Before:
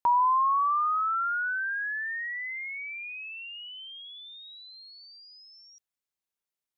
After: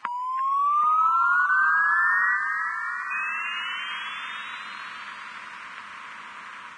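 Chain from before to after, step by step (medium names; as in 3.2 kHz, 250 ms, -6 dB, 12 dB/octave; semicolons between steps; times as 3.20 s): spectral levelling over time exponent 0.4; bass shelf 240 Hz +7.5 dB; on a send: echo that smears into a reverb 1008 ms, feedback 42%, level -14 dB; on the sum: compression 8:1, threshold -26 dBFS, peak gain reduction 8.5 dB; cabinet simulation 190–2700 Hz, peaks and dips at 210 Hz +8 dB, 390 Hz -6 dB, 820 Hz -9 dB; 1.46–3.11 s: gate with hold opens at -24 dBFS; level rider gain up to 8.5 dB; two-band feedback delay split 1.6 kHz, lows 784 ms, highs 341 ms, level -6.5 dB; crossover distortion -53 dBFS; Vorbis 16 kbps 22.05 kHz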